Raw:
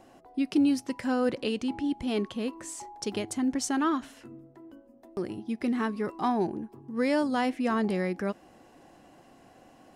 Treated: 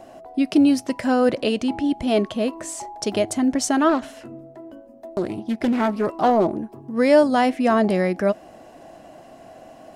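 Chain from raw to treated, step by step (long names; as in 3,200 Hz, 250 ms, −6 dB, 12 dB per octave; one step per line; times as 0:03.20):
parametric band 640 Hz +14.5 dB 0.22 octaves
0:03.89–0:06.55: highs frequency-modulated by the lows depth 0.36 ms
level +7.5 dB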